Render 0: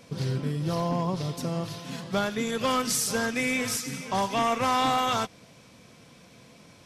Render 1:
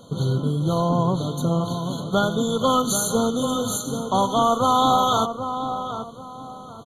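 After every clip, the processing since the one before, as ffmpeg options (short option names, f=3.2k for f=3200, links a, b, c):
-filter_complex "[0:a]asplit=2[a][b];[b]adelay=782,lowpass=f=1.7k:p=1,volume=-8dB,asplit=2[c][d];[d]adelay=782,lowpass=f=1.7k:p=1,volume=0.32,asplit=2[e][f];[f]adelay=782,lowpass=f=1.7k:p=1,volume=0.32,asplit=2[g][h];[h]adelay=782,lowpass=f=1.7k:p=1,volume=0.32[i];[a][c][e][g][i]amix=inputs=5:normalize=0,afftfilt=real='re*eq(mod(floor(b*sr/1024/1500),2),0)':imag='im*eq(mod(floor(b*sr/1024/1500),2),0)':win_size=1024:overlap=0.75,volume=6.5dB"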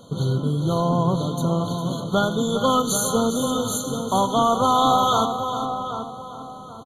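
-af "aecho=1:1:405:0.299"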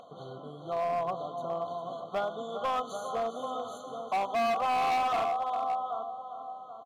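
-filter_complex "[0:a]asplit=3[a][b][c];[a]bandpass=f=730:t=q:w=8,volume=0dB[d];[b]bandpass=f=1.09k:t=q:w=8,volume=-6dB[e];[c]bandpass=f=2.44k:t=q:w=8,volume=-9dB[f];[d][e][f]amix=inputs=3:normalize=0,acompressor=mode=upward:threshold=-47dB:ratio=2.5,volume=27dB,asoftclip=hard,volume=-27dB,volume=1.5dB"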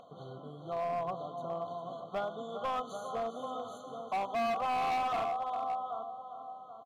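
-af "bass=f=250:g=4,treble=f=4k:g=-2,volume=-4dB"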